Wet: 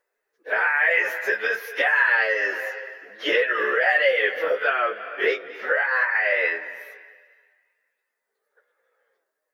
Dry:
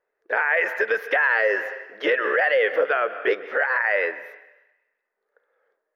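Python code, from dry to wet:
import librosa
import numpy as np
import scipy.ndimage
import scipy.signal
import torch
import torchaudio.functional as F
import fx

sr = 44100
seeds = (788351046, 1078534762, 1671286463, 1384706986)

y = fx.high_shelf(x, sr, hz=2600.0, db=11.5)
y = fx.stretch_vocoder_free(y, sr, factor=1.6)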